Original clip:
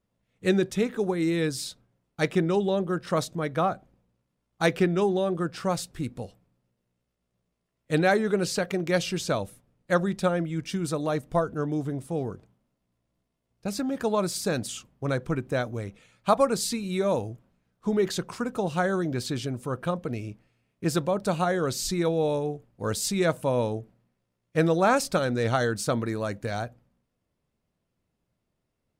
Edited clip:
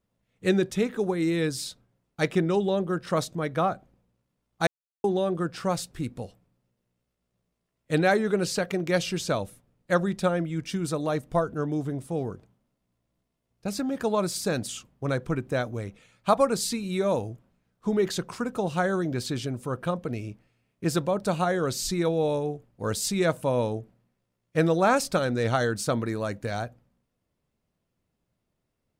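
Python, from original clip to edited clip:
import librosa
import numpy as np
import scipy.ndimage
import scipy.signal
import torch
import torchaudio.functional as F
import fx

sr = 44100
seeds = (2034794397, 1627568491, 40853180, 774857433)

y = fx.edit(x, sr, fx.silence(start_s=4.67, length_s=0.37), tone=tone)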